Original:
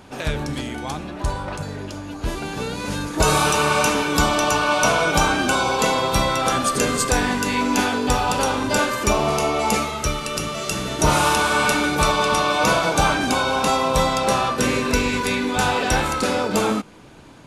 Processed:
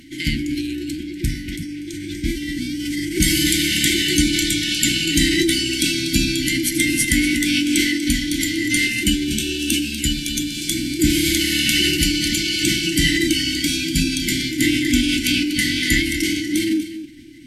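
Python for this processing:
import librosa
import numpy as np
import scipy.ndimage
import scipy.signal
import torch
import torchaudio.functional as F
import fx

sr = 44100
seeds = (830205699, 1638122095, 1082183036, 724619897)

y = fx.brickwall_bandstop(x, sr, low_hz=350.0, high_hz=1500.0)
y = fx.peak_eq(y, sr, hz=790.0, db=7.5, octaves=2.0)
y = fx.hum_notches(y, sr, base_hz=50, count=4)
y = y + 10.0 ** (-12.0 / 20.0) * np.pad(y, (int(242 * sr / 1000.0), 0))[:len(y)]
y = fx.formant_shift(y, sr, semitones=4)
y = y * 10.0 ** (3.5 / 20.0)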